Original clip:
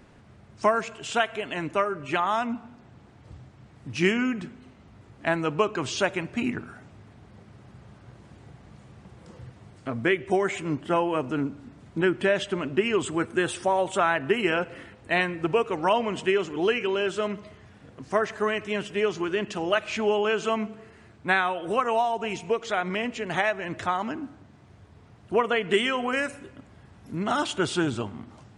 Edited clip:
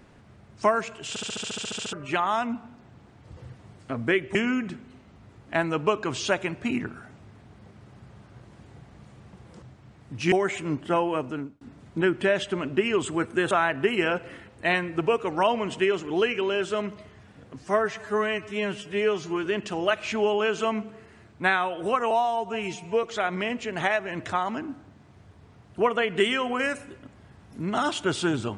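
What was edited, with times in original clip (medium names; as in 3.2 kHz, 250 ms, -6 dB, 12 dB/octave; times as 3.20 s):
1.09 s: stutter in place 0.07 s, 12 plays
3.37–4.07 s: swap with 9.34–10.32 s
10.98–11.61 s: fade out equal-power
13.51–13.97 s: delete
18.07–19.30 s: stretch 1.5×
21.95–22.57 s: stretch 1.5×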